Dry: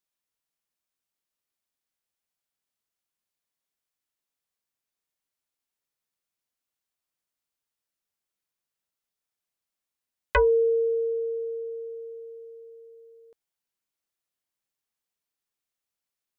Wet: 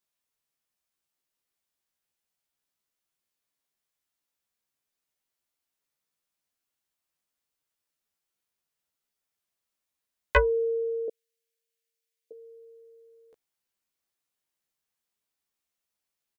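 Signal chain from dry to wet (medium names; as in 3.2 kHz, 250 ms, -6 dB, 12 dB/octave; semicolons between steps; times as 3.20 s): 11.08–12.31 s: inverse Chebyshev high-pass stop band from 390 Hz, stop band 70 dB; doubling 14 ms -3 dB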